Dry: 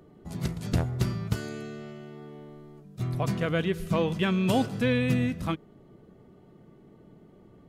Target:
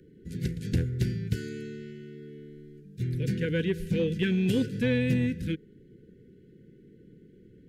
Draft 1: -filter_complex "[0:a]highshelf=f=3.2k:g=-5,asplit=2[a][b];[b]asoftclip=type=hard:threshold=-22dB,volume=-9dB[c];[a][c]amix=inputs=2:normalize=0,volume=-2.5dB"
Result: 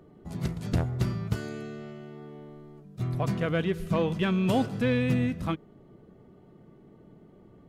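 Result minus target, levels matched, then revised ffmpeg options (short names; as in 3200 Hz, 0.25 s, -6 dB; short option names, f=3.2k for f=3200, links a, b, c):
1000 Hz band +20.0 dB
-filter_complex "[0:a]asuperstop=centerf=880:order=20:qfactor=0.92,highshelf=f=3.2k:g=-5,asplit=2[a][b];[b]asoftclip=type=hard:threshold=-22dB,volume=-9dB[c];[a][c]amix=inputs=2:normalize=0,volume=-2.5dB"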